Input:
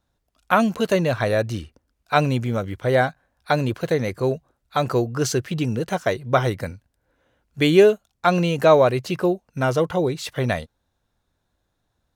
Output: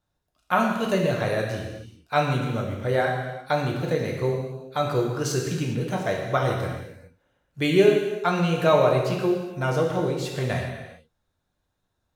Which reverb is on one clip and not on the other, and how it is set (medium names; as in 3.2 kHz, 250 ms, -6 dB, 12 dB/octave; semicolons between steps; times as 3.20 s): gated-style reverb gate 450 ms falling, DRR -1 dB; trim -6.5 dB